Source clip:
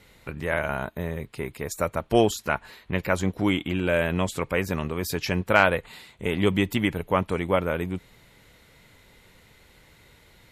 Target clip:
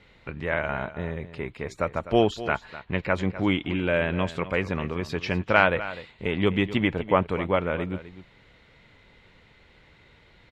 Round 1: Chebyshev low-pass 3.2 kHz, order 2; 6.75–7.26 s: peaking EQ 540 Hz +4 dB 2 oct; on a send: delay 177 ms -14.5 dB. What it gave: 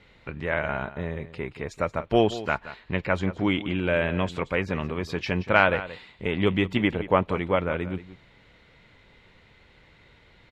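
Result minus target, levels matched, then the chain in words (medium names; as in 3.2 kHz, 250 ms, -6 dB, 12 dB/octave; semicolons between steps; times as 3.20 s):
echo 75 ms early
Chebyshev low-pass 3.2 kHz, order 2; 6.75–7.26 s: peaking EQ 540 Hz +4 dB 2 oct; on a send: delay 252 ms -14.5 dB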